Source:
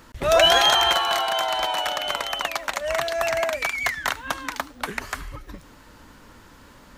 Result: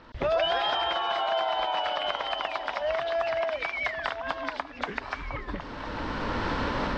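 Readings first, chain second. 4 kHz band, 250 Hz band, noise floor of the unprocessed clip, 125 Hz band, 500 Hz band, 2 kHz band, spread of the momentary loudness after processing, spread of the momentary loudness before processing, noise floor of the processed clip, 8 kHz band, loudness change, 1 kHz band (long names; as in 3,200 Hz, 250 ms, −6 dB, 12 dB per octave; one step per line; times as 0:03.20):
−10.0 dB, +2.5 dB, −49 dBFS, +1.5 dB, −4.0 dB, −6.0 dB, 9 LU, 16 LU, −42 dBFS, below −20 dB, −7.5 dB, −4.0 dB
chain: hearing-aid frequency compression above 3,200 Hz 1.5 to 1
camcorder AGC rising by 20 dB per second
low-pass filter 4,700 Hz 24 dB per octave
parametric band 670 Hz +5 dB 1.8 octaves
on a send: echo through a band-pass that steps 500 ms, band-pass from 330 Hz, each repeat 1.4 octaves, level −8 dB
on the sum: downward compressor 2 to 1, threshold −25 dBFS, peak gain reduction 9 dB
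level −4.5 dB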